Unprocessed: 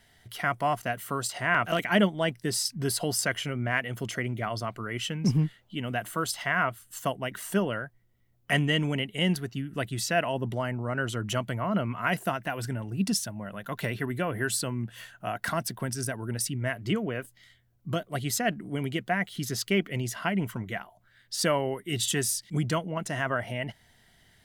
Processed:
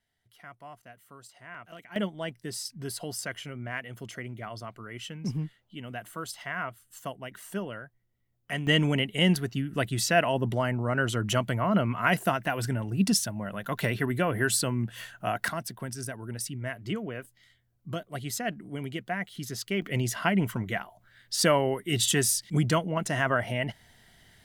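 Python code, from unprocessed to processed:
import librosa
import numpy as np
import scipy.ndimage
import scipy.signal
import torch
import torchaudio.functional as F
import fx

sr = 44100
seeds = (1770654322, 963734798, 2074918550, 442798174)

y = fx.gain(x, sr, db=fx.steps((0.0, -19.5), (1.96, -7.5), (8.67, 3.0), (15.48, -4.5), (19.82, 3.0)))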